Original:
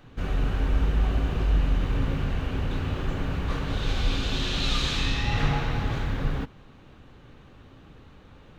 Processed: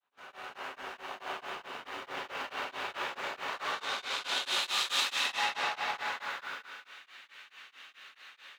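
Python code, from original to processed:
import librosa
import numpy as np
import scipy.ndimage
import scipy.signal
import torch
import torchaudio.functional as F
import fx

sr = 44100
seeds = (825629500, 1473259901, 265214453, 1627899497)

p1 = fx.fade_in_head(x, sr, length_s=1.3)
p2 = fx.over_compress(p1, sr, threshold_db=-30.0, ratio=-1.0)
p3 = p1 + (p2 * 10.0 ** (-1.5 / 20.0))
p4 = 10.0 ** (-24.5 / 20.0) * np.tanh(p3 / 10.0 ** (-24.5 / 20.0))
p5 = fx.filter_sweep_highpass(p4, sr, from_hz=860.0, to_hz=1900.0, start_s=5.77, end_s=6.93, q=1.3)
p6 = p5 + fx.echo_thinned(p5, sr, ms=183, feedback_pct=42, hz=340.0, wet_db=-6, dry=0)
p7 = fx.rev_gated(p6, sr, seeds[0], gate_ms=210, shape='flat', drr_db=-3.0)
p8 = p7 * np.abs(np.cos(np.pi * 4.6 * np.arange(len(p7)) / sr))
y = p8 * 10.0 ** (-2.5 / 20.0)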